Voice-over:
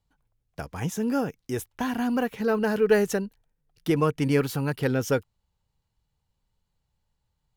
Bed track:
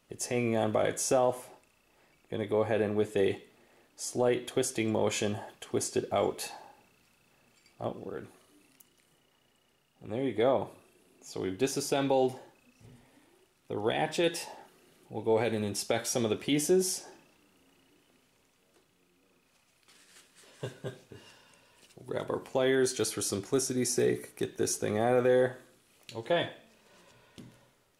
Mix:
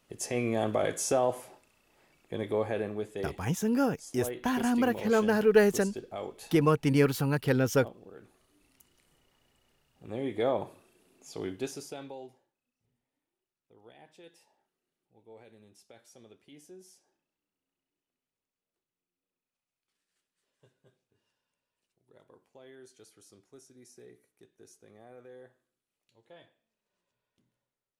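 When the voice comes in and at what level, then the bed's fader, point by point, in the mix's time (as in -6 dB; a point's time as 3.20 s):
2.65 s, -1.0 dB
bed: 2.50 s -0.5 dB
3.31 s -10 dB
8.19 s -10 dB
8.93 s -2 dB
11.46 s -2 dB
12.52 s -25.5 dB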